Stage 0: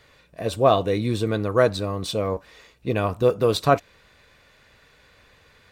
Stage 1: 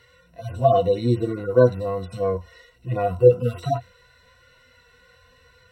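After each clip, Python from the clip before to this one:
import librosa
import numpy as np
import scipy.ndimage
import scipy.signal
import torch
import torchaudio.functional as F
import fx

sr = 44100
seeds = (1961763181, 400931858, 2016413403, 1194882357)

y = fx.hpss_only(x, sr, part='harmonic')
y = fx.ripple_eq(y, sr, per_octave=2.0, db=16)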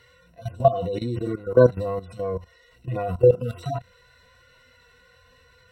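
y = fx.level_steps(x, sr, step_db=15)
y = F.gain(torch.from_numpy(y), 3.5).numpy()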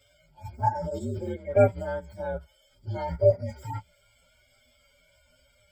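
y = fx.partial_stretch(x, sr, pct=124)
y = F.gain(torch.from_numpy(y), -3.0).numpy()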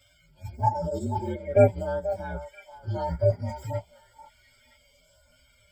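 y = fx.filter_lfo_notch(x, sr, shape='saw_up', hz=0.94, low_hz=410.0, high_hz=3000.0, q=1.4)
y = fx.echo_stepped(y, sr, ms=485, hz=840.0, octaves=1.4, feedback_pct=70, wet_db=-8.0)
y = F.gain(torch.from_numpy(y), 2.5).numpy()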